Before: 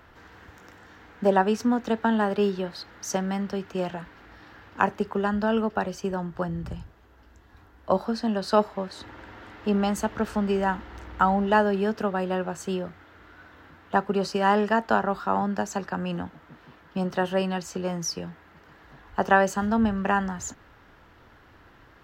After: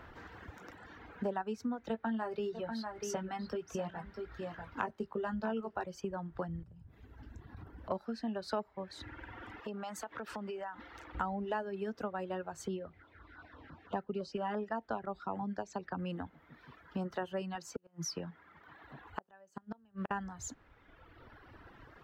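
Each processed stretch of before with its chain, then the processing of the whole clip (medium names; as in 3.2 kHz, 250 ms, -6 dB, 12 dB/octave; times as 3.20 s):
1.88–5.84 s: doubling 18 ms -6 dB + delay 643 ms -10.5 dB
6.63–7.91 s: peaking EQ 140 Hz +12.5 dB 2.1 oct + compression 10:1, threshold -42 dBFS
9.60–11.15 s: high-pass 510 Hz 6 dB/octave + compression 5:1, threshold -36 dBFS
12.68–15.99 s: low-pass 5.8 kHz + LFO notch saw down 5.9 Hz 810–2800 Hz
17.55–20.11 s: high-pass 100 Hz + inverted gate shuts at -18 dBFS, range -33 dB
whole clip: reverb removal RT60 1.5 s; treble shelf 3.6 kHz -8 dB; compression 3:1, threshold -40 dBFS; trim +1.5 dB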